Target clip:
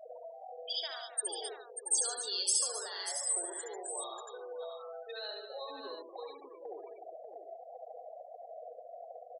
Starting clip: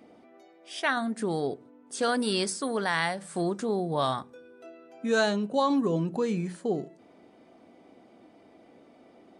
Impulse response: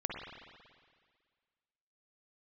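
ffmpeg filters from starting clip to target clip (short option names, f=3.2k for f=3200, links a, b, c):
-filter_complex "[0:a]aeval=exprs='val(0)+0.5*0.0335*sgn(val(0))':c=same,highpass=f=480:w=0.5412,highpass=f=480:w=1.3066,afftfilt=real='re*gte(hypot(re,im),0.0631)':imag='im*gte(hypot(re,im),0.0631)':win_size=1024:overlap=0.75,acrossover=split=8500[a][b];[b]acompressor=threshold=-51dB:ratio=4:attack=1:release=60[c];[a][c]amix=inputs=2:normalize=0,highshelf=f=2.6k:g=3,alimiter=limit=-22.5dB:level=0:latency=1:release=102,acompressor=threshold=-47dB:ratio=4,aexciter=amount=7.3:drive=3.1:freq=3.6k,aecho=1:1:69|144|263|283|589|681:0.631|0.316|0.251|0.112|0.335|0.376"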